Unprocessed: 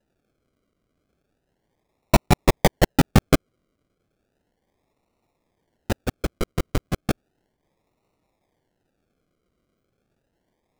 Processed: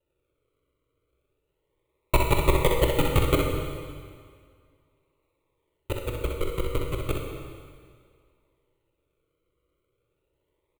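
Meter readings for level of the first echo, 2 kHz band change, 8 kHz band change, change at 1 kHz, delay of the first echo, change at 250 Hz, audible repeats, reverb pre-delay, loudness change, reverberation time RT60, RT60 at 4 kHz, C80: −5.5 dB, −3.0 dB, −5.5 dB, −3.5 dB, 63 ms, −7.5 dB, 1, 12 ms, −3.5 dB, 1.9 s, 1.9 s, 4.0 dB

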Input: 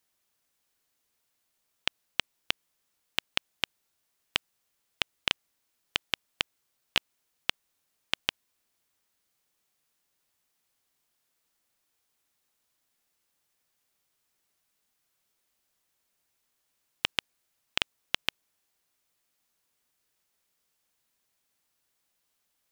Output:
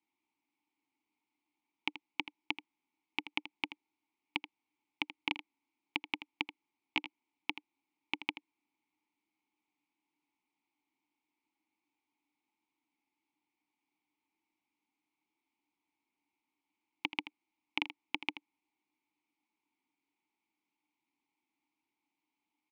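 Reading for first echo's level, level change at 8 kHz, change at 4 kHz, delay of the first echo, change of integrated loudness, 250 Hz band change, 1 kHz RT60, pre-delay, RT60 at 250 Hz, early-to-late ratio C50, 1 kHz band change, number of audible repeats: −13.0 dB, below −20 dB, −10.5 dB, 81 ms, −6.5 dB, +4.0 dB, no reverb audible, no reverb audible, no reverb audible, no reverb audible, −2.5 dB, 1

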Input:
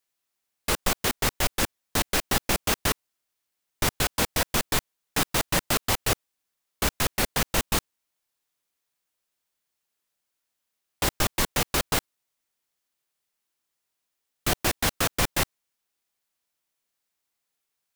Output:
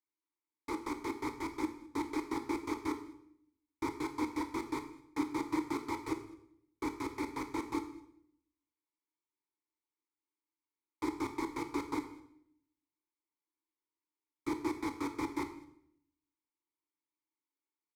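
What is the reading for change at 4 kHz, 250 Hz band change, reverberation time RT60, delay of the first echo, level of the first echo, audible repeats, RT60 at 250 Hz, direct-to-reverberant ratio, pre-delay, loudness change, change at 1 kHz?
−24.0 dB, −2.0 dB, 0.70 s, 209 ms, −25.0 dB, 1, 0.95 s, 7.0 dB, 19 ms, −12.5 dB, −9.0 dB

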